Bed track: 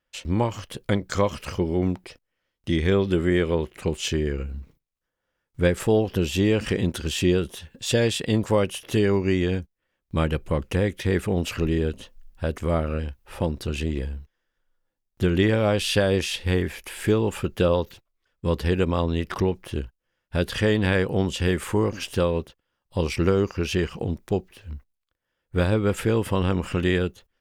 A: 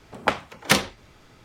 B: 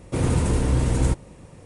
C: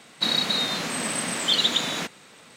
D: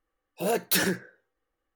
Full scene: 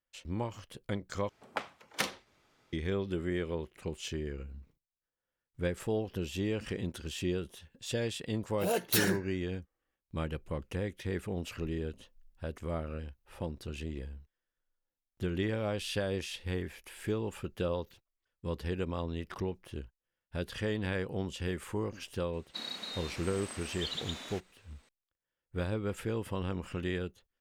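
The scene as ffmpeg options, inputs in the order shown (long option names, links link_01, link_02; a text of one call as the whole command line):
ffmpeg -i bed.wav -i cue0.wav -i cue1.wav -i cue2.wav -i cue3.wav -filter_complex "[0:a]volume=-12.5dB[link_01];[1:a]lowshelf=frequency=170:gain=-11[link_02];[3:a]equalizer=frequency=150:width_type=o:width=0.59:gain=-8[link_03];[link_01]asplit=2[link_04][link_05];[link_04]atrim=end=1.294[link_06];[link_02]atrim=end=1.44,asetpts=PTS-STARTPTS,volume=-13.5dB[link_07];[link_05]atrim=start=2.726[link_08];[4:a]atrim=end=1.75,asetpts=PTS-STARTPTS,volume=-4.5dB,afade=type=in:duration=0.004:curve=hsin,afade=type=out:start_time=1.746:duration=0.004:curve=hsin,adelay=8210[link_09];[link_03]atrim=end=2.56,asetpts=PTS-STARTPTS,volume=-17dB,afade=type=in:duration=0.004:curve=hsin,afade=type=out:start_time=2.556:duration=0.004:curve=hsin,adelay=22330[link_10];[link_06][link_07]acrossfade=duration=0.004:curve1=hsin:curve2=hsin[link_11];[link_11][link_08]acrossfade=duration=0.004:curve1=hsin:curve2=hsin[link_12];[link_12][link_09][link_10]amix=inputs=3:normalize=0" out.wav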